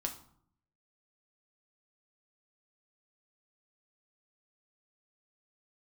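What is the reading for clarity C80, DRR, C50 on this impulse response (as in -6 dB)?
15.0 dB, 3.0 dB, 10.5 dB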